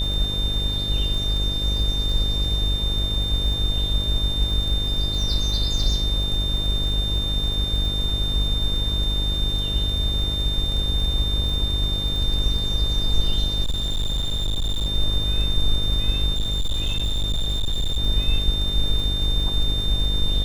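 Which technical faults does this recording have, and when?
mains buzz 50 Hz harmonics 13 −26 dBFS
surface crackle 27 per second −28 dBFS
whistle 3,600 Hz −25 dBFS
0:05.83: drop-out 2.9 ms
0:13.64–0:14.87: clipping −19.5 dBFS
0:16.34–0:17.98: clipping −18.5 dBFS

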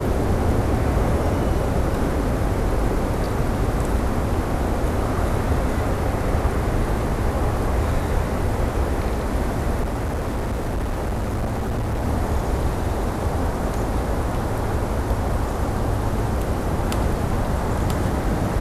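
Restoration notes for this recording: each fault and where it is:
0:09.82–0:12.05: clipping −20.5 dBFS

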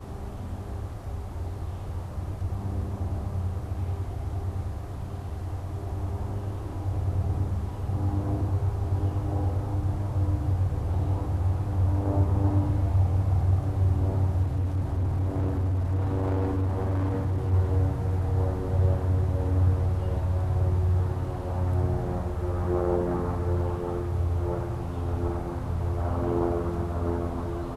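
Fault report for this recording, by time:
0:14.43–0:17.54: clipping −23 dBFS

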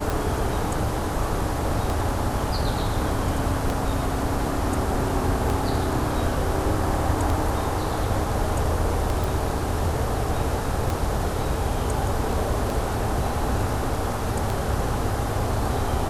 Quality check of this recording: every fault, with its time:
scratch tick 33 1/3 rpm
0:09.24: click

